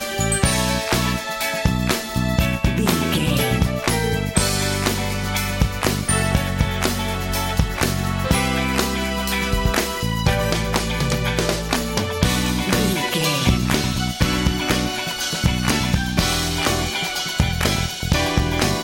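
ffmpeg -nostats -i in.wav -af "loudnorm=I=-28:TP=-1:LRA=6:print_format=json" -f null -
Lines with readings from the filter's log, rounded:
"input_i" : "-20.3",
"input_tp" : "-5.6",
"input_lra" : "1.1",
"input_thresh" : "-30.3",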